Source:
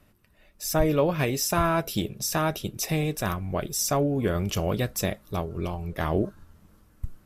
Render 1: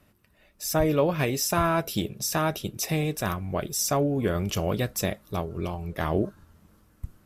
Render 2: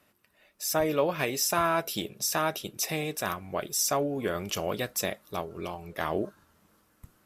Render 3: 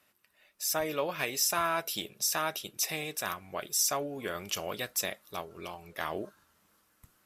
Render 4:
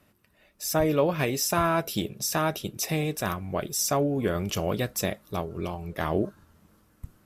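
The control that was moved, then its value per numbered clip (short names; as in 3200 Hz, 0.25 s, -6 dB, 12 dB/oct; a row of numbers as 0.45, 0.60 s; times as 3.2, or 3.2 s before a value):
HPF, cutoff: 50, 480, 1400, 130 Hz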